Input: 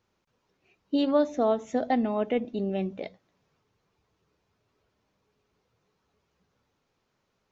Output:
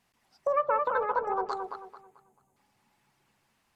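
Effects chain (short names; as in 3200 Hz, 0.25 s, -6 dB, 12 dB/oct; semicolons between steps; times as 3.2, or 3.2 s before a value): spectral gain 4.01–5.13, 500–3100 Hz -16 dB; treble ducked by the level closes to 460 Hz, closed at -25.5 dBFS; bell 210 Hz -8 dB 1 oct; dark delay 0.44 s, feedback 31%, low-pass 1300 Hz, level -4.5 dB; speed mistake 7.5 ips tape played at 15 ips; ending taper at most 460 dB/s; gain +3.5 dB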